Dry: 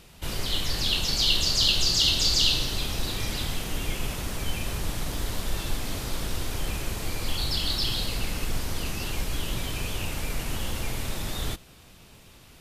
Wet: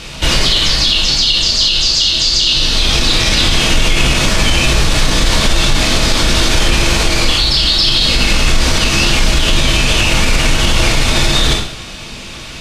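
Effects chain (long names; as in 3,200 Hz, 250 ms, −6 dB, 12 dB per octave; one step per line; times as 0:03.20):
high-shelf EQ 2,200 Hz +11 dB
speech leveller 0.5 s
high-frequency loss of the air 100 metres
convolution reverb, pre-delay 3 ms, DRR −1 dB
boost into a limiter +12 dB
level −1 dB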